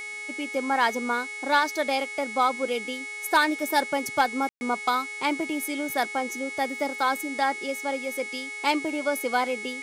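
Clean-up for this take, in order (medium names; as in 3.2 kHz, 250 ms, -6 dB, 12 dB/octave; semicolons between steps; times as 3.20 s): de-hum 419 Hz, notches 26; band-stop 2.2 kHz, Q 30; room tone fill 4.49–4.61 s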